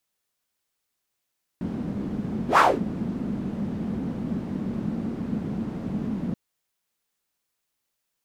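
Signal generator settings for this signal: whoosh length 4.73 s, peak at 0.97 s, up 0.11 s, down 0.26 s, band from 210 Hz, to 1.2 kHz, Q 3.9, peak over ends 13.5 dB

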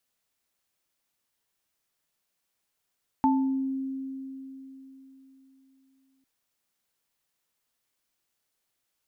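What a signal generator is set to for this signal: sine partials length 3.00 s, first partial 267 Hz, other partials 879 Hz, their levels 1 dB, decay 3.81 s, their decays 0.50 s, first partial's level -20 dB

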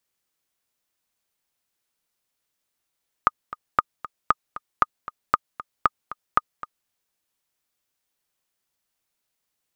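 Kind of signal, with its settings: metronome 232 bpm, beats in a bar 2, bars 7, 1.23 kHz, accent 16 dB -3 dBFS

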